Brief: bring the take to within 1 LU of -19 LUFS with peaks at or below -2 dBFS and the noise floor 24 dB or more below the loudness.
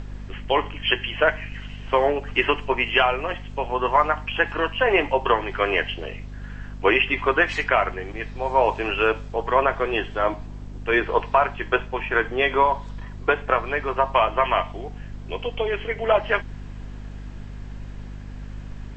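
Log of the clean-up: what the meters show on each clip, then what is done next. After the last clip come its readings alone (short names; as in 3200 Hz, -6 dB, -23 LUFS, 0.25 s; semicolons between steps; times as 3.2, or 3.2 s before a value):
hum 50 Hz; harmonics up to 250 Hz; hum level -33 dBFS; noise floor -37 dBFS; noise floor target -47 dBFS; loudness -22.5 LUFS; peak -4.0 dBFS; loudness target -19.0 LUFS
-> de-hum 50 Hz, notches 5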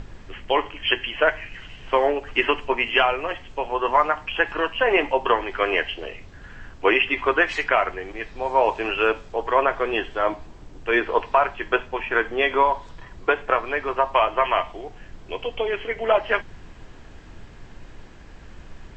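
hum none; noise floor -44 dBFS; noise floor target -47 dBFS
-> noise print and reduce 6 dB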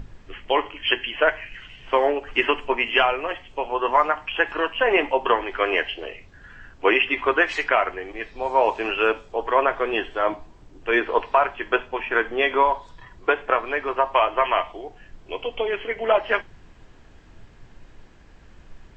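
noise floor -49 dBFS; loudness -22.5 LUFS; peak -4.0 dBFS; loudness target -19.0 LUFS
-> gain +3.5 dB; limiter -2 dBFS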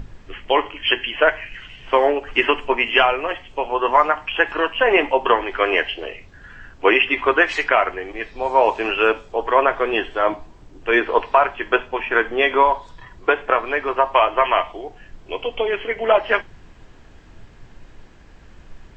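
loudness -19.0 LUFS; peak -2.0 dBFS; noise floor -46 dBFS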